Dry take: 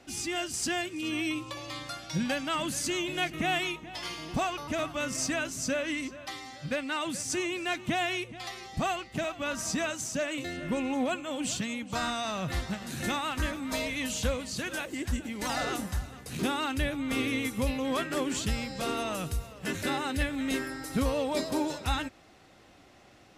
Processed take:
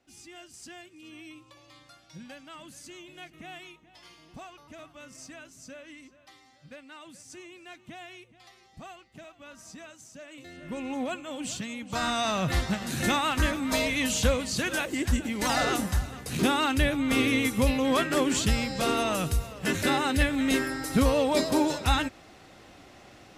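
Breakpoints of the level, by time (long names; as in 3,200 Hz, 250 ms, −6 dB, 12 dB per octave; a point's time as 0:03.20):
0:10.21 −15 dB
0:10.91 −2.5 dB
0:11.74 −2.5 dB
0:12.21 +5.5 dB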